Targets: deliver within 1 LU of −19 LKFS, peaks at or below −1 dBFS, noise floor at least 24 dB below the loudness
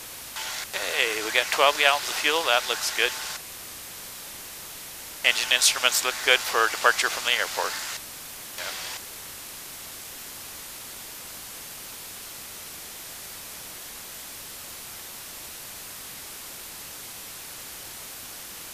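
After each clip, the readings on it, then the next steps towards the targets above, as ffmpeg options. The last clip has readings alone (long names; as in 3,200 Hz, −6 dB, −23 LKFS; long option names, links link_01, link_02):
background noise floor −40 dBFS; target noise floor −47 dBFS; integrated loudness −23.0 LKFS; sample peak −2.0 dBFS; target loudness −19.0 LKFS
→ -af "afftdn=noise_reduction=7:noise_floor=-40"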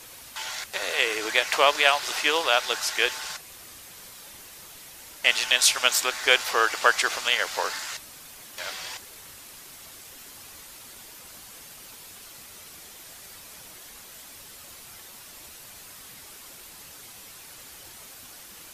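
background noise floor −46 dBFS; target noise floor −47 dBFS
→ -af "afftdn=noise_reduction=6:noise_floor=-46"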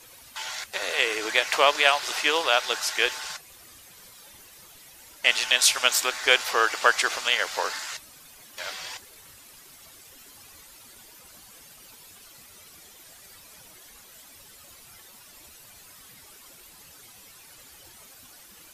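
background noise floor −50 dBFS; integrated loudness −23.0 LKFS; sample peak −2.5 dBFS; target loudness −19.0 LKFS
→ -af "volume=4dB,alimiter=limit=-1dB:level=0:latency=1"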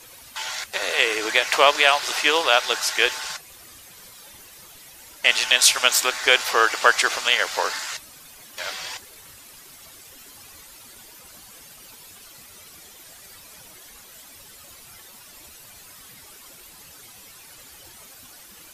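integrated loudness −19.5 LKFS; sample peak −1.0 dBFS; background noise floor −46 dBFS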